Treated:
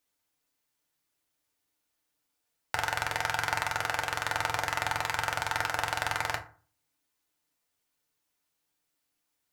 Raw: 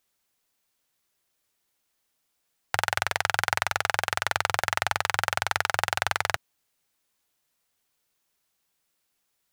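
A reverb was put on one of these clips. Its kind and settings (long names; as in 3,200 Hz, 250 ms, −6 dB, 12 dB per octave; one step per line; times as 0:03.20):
feedback delay network reverb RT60 0.41 s, low-frequency decay 1.25×, high-frequency decay 0.55×, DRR 2 dB
level −6 dB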